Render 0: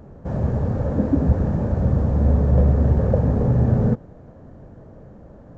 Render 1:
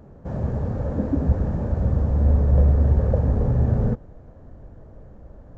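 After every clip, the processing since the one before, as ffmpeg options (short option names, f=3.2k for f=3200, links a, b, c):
-af "asubboost=boost=3.5:cutoff=79,volume=-3.5dB"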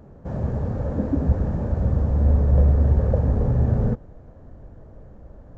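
-af anull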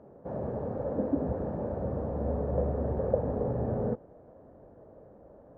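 -af "bandpass=f=550:t=q:w=1:csg=0"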